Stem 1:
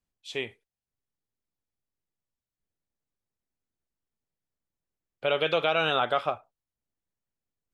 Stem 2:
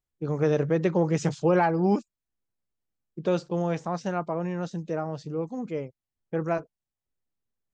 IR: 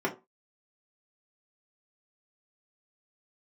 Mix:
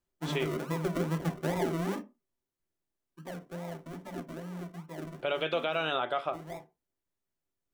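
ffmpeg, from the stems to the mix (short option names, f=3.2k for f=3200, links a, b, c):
-filter_complex "[0:a]volume=-1dB,asplit=2[a][b];[b]volume=-17.5dB[c];[1:a]acompressor=threshold=-24dB:ratio=6,equalizer=f=370:t=o:w=0.47:g=-15,acrusher=samples=42:mix=1:aa=0.000001:lfo=1:lforange=25.2:lforate=2.4,volume=-6dB,afade=t=out:st=2.19:d=0.4:silence=0.334965,asplit=2[d][e];[e]volume=-7dB[f];[2:a]atrim=start_sample=2205[g];[c][f]amix=inputs=2:normalize=0[h];[h][g]afir=irnorm=-1:irlink=0[i];[a][d][i]amix=inputs=3:normalize=0,alimiter=limit=-19.5dB:level=0:latency=1:release=431"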